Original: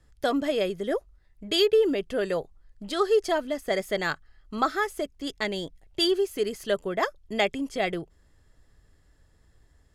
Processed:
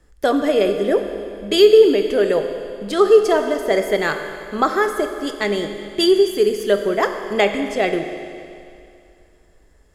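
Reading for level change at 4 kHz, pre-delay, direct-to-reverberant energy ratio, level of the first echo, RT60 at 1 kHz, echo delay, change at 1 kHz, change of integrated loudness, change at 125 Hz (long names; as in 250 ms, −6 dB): +5.0 dB, 19 ms, 6.0 dB, no echo audible, 2.5 s, no echo audible, +7.5 dB, +9.5 dB, +6.5 dB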